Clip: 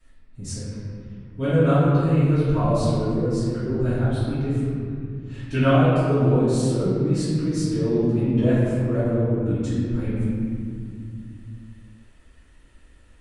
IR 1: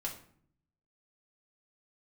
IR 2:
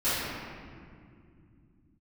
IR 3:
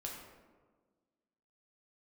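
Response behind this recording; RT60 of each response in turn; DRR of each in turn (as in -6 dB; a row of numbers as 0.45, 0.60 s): 2; 0.55, 2.4, 1.5 s; -3.0, -17.0, -2.0 dB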